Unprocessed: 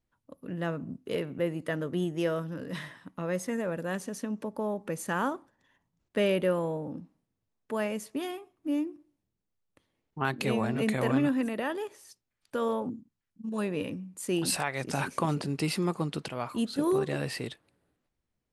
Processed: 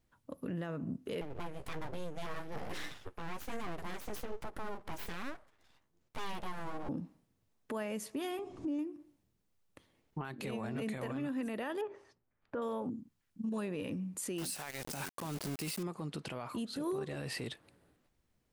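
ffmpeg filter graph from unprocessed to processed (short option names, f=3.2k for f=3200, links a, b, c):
-filter_complex "[0:a]asettb=1/sr,asplit=3[a][b][c];[a]atrim=end=1.214[d];[b]atrim=start=1.21:end=6.89,asetpts=PTS-STARTPTS,afade=t=in:d=0.004:c=qsin,afade=t=out:st=5.676:d=0.004:c=qsin,flanger=delay=6.2:depth=8.6:regen=28:speed=1.2:shape=sinusoidal,aeval=exprs='abs(val(0))':c=same[e];[c]atrim=start=6.886[f];[d][e]acrossfade=d=0.004:c1=hsin:c2=qsin[g];[g][f]acrossfade=d=0.004:c1=qsin:c2=hsin,asettb=1/sr,asplit=3[h][i][j];[h]atrim=end=8.394[k];[i]atrim=start=8.39:end=8.79,asetpts=PTS-STARTPTS,afade=t=in:d=0.004:c=qsin,afade=t=out:st=0.396:d=0.004:c=qsin,lowpass=f=7.2k:w=0.5412,lowpass=f=7.2k:w=1.3066,acompressor=mode=upward:threshold=-32dB:ratio=2.5:attack=3.2:release=140:knee=2.83:detection=peak,equalizer=f=2k:w=0.48:g=-9[l];[j]atrim=start=8.786[m];[k][l]acrossfade=d=0.004:c1=hsin:c2=qsin[n];[n][m]acrossfade=d=0.004:c1=qsin:c2=hsin,asettb=1/sr,asplit=3[o][p][q];[o]atrim=end=11.814[r];[p]atrim=start=11.81:end=12.62,asetpts=PTS-STARTPTS,afade=t=in:d=0.004:c=qsin,afade=t=out:st=0.806:d=0.004:c=qsin,lowpass=1.4k,bandreject=f=50:t=h:w=6,bandreject=f=100:t=h:w=6,bandreject=f=150:t=h:w=6,bandreject=f=200:t=h:w=6,bandreject=f=250:t=h:w=6,bandreject=f=300:t=h:w=6,bandreject=f=350:t=h:w=6,bandreject=f=400:t=h:w=6[s];[q]atrim=start=12.616[t];[r][s]acrossfade=d=0.004:c1=hsin:c2=qsin[u];[u][t]acrossfade=d=0.004:c1=qsin:c2=hsin,asettb=1/sr,asplit=3[v][w][x];[v]atrim=end=14.384[y];[w]atrim=start=14.38:end=15.83,asetpts=PTS-STARTPTS,afade=t=in:d=0.004:c=qsin,afade=t=out:st=1.446:d=0.004:c=qsin,aeval=exprs='val(0)*gte(abs(val(0)),0.0188)':c=same,highshelf=f=5k:g=10.5[z];[x]atrim=start=15.826[aa];[y][z]acrossfade=d=0.004:c1=hsin:c2=qsin[ab];[ab][aa]acrossfade=d=0.004:c1=qsin:c2=hsin,acompressor=threshold=-39dB:ratio=12,alimiter=level_in=12dB:limit=-24dB:level=0:latency=1:release=13,volume=-12dB,volume=6dB"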